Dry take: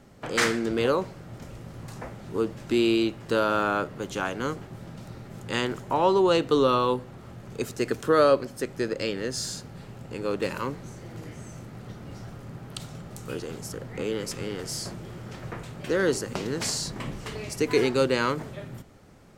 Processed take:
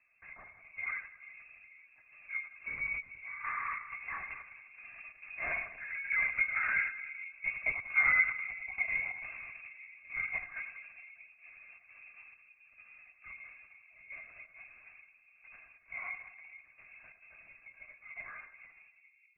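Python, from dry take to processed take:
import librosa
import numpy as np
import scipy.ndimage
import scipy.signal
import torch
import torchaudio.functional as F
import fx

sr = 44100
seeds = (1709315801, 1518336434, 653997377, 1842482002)

p1 = scipy.ndimage.median_filter(x, 15, mode='constant')
p2 = fx.doppler_pass(p1, sr, speed_mps=7, closest_m=5.6, pass_at_s=7.27)
p3 = fx.hum_notches(p2, sr, base_hz=60, count=7)
p4 = p3 + 0.97 * np.pad(p3, (int(2.1 * sr / 1000.0), 0))[:len(p3)]
p5 = fx.rider(p4, sr, range_db=4, speed_s=0.5)
p6 = fx.step_gate(p5, sr, bpm=135, pattern='xxx....xxx.x', floor_db=-12.0, edge_ms=4.5)
p7 = p6 + fx.echo_split(p6, sr, split_hz=430.0, low_ms=432, high_ms=88, feedback_pct=52, wet_db=-9.5, dry=0)
p8 = fx.freq_invert(p7, sr, carrier_hz=2600)
p9 = fx.lpc_vocoder(p8, sr, seeds[0], excitation='whisper', order=16)
y = p9 * 10.0 ** (-5.0 / 20.0)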